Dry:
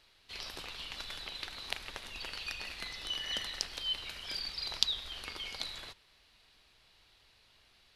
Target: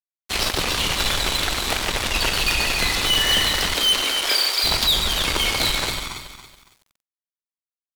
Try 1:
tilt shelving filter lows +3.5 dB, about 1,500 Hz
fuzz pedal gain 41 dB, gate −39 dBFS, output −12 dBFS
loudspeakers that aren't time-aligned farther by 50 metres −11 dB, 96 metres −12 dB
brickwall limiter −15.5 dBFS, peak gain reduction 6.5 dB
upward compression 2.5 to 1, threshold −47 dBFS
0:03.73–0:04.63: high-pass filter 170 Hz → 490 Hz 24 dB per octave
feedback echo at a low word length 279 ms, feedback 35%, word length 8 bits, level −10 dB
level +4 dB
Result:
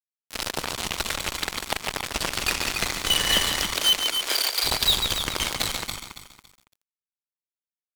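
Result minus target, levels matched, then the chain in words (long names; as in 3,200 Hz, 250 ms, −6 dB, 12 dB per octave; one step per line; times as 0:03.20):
fuzz pedal: distortion +4 dB
tilt shelving filter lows +3.5 dB, about 1,500 Hz
fuzz pedal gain 41 dB, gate −46.5 dBFS, output −12 dBFS
loudspeakers that aren't time-aligned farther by 50 metres −11 dB, 96 metres −12 dB
brickwall limiter −15.5 dBFS, peak gain reduction 7 dB
upward compression 2.5 to 1, threshold −47 dBFS
0:03.73–0:04.63: high-pass filter 170 Hz → 490 Hz 24 dB per octave
feedback echo at a low word length 279 ms, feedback 35%, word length 8 bits, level −10 dB
level +4 dB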